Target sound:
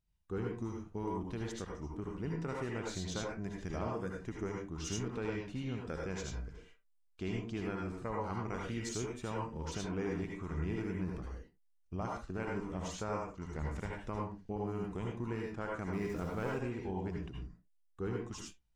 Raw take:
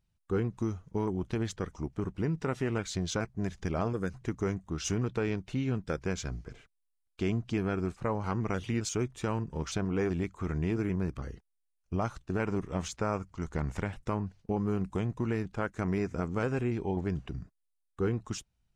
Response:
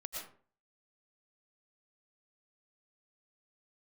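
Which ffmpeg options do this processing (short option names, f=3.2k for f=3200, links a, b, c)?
-filter_complex "[0:a]asettb=1/sr,asplit=3[a][b][c];[a]atrim=end=15.934[d];[b]atrim=start=15.93:end=16.5,asetpts=PTS-STARTPTS,afade=t=in:d=0.004:c=qsin,afade=t=out:st=0.566:d=0.004:c=qsin,aeval=exprs='val(0)+0.5*0.00794*sgn(val(0))':c=same[e];[c]atrim=start=16.496[f];[d][e]acrossfade=d=0.004:c1=hsin:c2=qsin[g];[g][f]acrossfade=d=0.004:c1=qsin:c2=hsin[h];[1:a]atrim=start_sample=2205,afade=t=out:st=0.34:d=0.01,atrim=end_sample=15435,asetrate=66150,aresample=44100[i];[h][i]afir=irnorm=-1:irlink=0"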